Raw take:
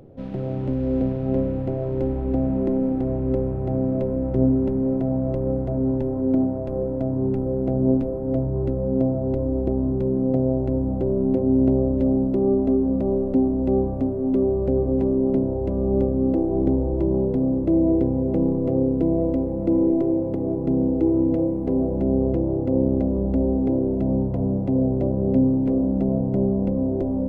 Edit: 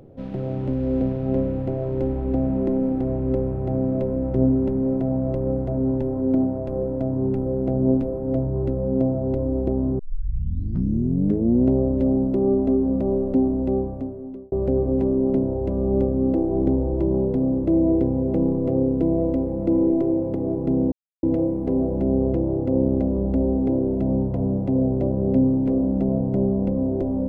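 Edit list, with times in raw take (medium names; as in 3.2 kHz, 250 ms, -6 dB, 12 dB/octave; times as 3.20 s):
9.99 s: tape start 1.69 s
13.52–14.52 s: fade out
20.92–21.23 s: mute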